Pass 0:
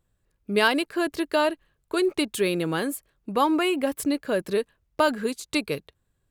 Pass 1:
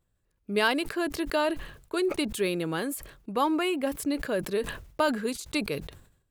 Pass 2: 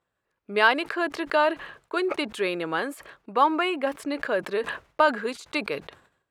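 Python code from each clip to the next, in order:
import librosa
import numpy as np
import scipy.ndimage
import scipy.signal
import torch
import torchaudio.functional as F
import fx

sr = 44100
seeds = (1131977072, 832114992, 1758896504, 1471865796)

y1 = fx.sustainer(x, sr, db_per_s=88.0)
y1 = F.gain(torch.from_numpy(y1), -4.0).numpy()
y2 = fx.bandpass_q(y1, sr, hz=1200.0, q=0.72)
y2 = F.gain(torch.from_numpy(y2), 7.5).numpy()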